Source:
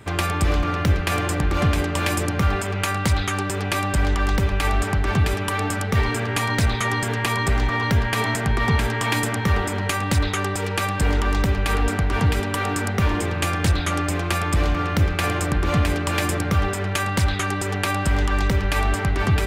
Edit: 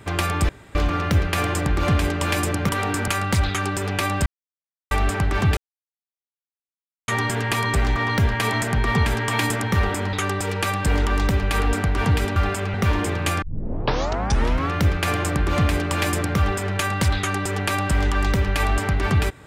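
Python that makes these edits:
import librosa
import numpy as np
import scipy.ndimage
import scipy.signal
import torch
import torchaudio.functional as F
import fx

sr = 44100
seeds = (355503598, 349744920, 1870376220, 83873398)

y = fx.edit(x, sr, fx.insert_room_tone(at_s=0.49, length_s=0.26),
    fx.swap(start_s=2.43, length_s=0.38, other_s=12.51, other_length_s=0.39),
    fx.silence(start_s=3.99, length_s=0.65),
    fx.silence(start_s=5.3, length_s=1.51),
    fx.cut(start_s=9.86, length_s=0.42),
    fx.tape_start(start_s=13.58, length_s=1.29), tone=tone)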